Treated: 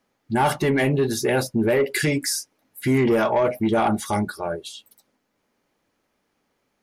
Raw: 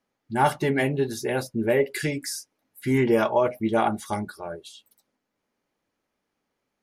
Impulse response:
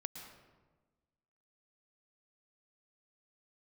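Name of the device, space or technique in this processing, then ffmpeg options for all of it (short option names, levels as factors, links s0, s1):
soft clipper into limiter: -af "asoftclip=type=tanh:threshold=0.168,alimiter=limit=0.0891:level=0:latency=1:release=19,volume=2.37"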